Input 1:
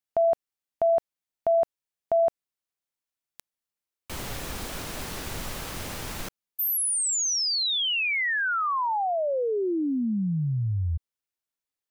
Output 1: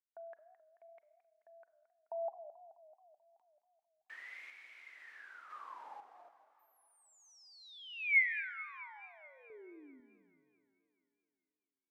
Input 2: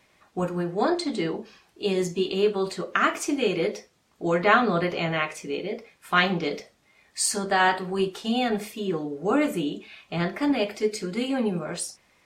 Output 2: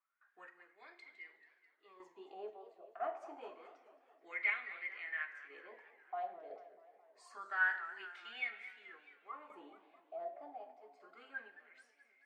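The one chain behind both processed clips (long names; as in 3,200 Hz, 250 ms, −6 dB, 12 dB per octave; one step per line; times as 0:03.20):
high-pass filter 260 Hz 24 dB per octave
noise gate with hold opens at −51 dBFS, hold 227 ms, range −11 dB
LFO wah 0.27 Hz 670–2,200 Hz, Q 17
sample-and-hold tremolo 2 Hz, depth 75%
four-comb reverb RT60 1 s, combs from 33 ms, DRR 13.5 dB
feedback echo with a swinging delay time 216 ms, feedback 62%, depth 184 cents, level −15 dB
level +3.5 dB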